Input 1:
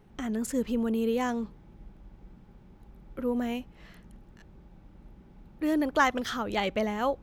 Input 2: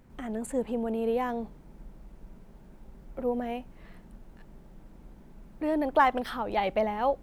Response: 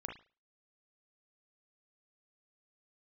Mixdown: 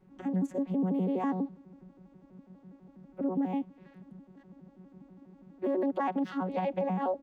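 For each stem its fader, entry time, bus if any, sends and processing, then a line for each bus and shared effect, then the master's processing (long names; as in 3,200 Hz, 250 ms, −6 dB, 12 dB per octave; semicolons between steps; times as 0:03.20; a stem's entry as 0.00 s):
−12.0 dB, 0.00 s, no send, automatic ducking −12 dB, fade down 0.25 s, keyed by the second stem
+1.5 dB, 1.3 ms, no send, vocoder with an arpeggio as carrier bare fifth, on F#3, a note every 82 ms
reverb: not used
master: brickwall limiter −22.5 dBFS, peak gain reduction 9.5 dB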